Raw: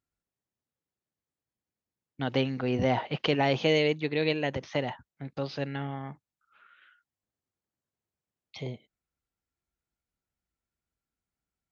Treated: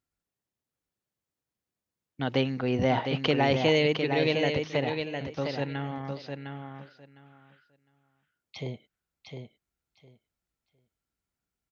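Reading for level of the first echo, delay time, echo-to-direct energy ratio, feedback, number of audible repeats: -6.0 dB, 707 ms, -6.0 dB, 17%, 2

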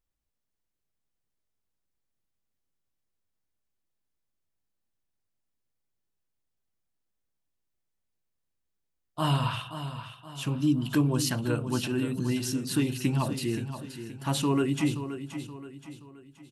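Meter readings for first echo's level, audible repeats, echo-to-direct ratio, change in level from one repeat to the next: -10.5 dB, 4, -9.5 dB, -7.5 dB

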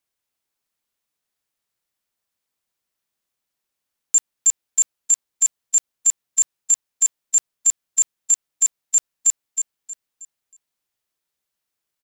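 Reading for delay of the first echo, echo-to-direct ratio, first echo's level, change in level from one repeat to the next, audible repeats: 316 ms, -7.5 dB, -8.0 dB, -9.5 dB, 3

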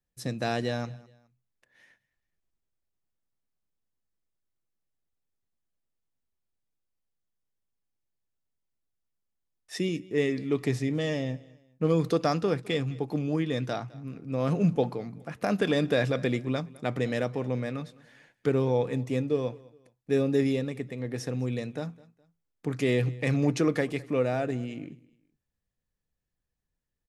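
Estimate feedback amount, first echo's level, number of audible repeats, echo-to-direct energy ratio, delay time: 35%, -22.5 dB, 2, -22.0 dB, 208 ms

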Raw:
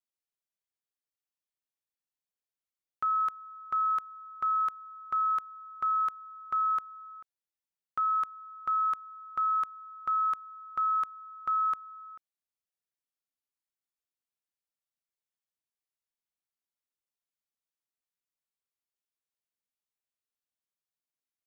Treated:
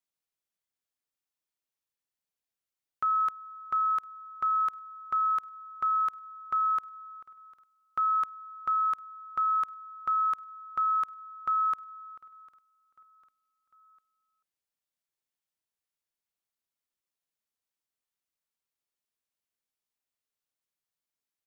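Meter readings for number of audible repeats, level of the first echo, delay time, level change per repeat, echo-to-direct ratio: 2, -23.5 dB, 750 ms, -6.0 dB, -22.5 dB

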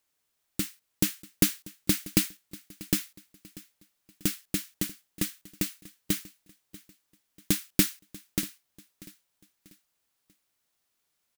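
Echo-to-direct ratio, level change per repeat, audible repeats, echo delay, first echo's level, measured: -19.5 dB, -8.0 dB, 2, 640 ms, -20.0 dB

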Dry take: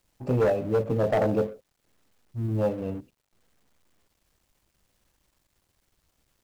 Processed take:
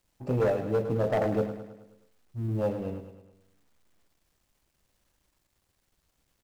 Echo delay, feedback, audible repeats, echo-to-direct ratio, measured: 106 ms, 52%, 5, -8.5 dB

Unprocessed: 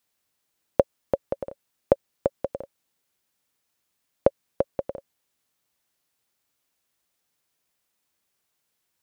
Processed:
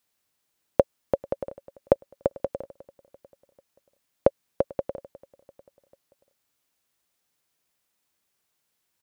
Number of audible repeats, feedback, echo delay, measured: 2, 53%, 443 ms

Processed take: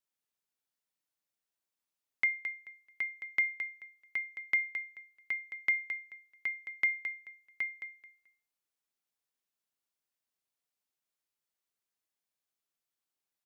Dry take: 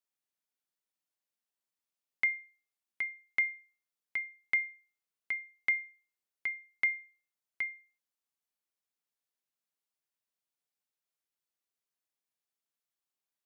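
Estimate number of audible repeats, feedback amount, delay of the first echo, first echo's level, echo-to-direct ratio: 2, 22%, 217 ms, -9.0 dB, -9.0 dB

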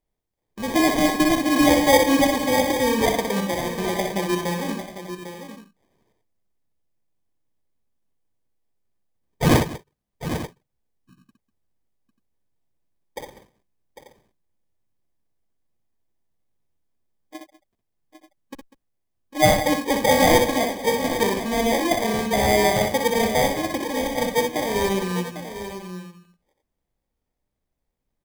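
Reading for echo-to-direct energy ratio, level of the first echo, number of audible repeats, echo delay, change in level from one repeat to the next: -4.0 dB, -5.5 dB, 4, 62 ms, no regular repeats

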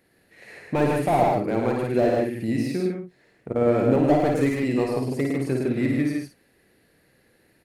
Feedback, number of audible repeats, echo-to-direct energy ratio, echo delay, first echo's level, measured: no regular repeats, 4, 1.5 dB, 54 ms, -3.5 dB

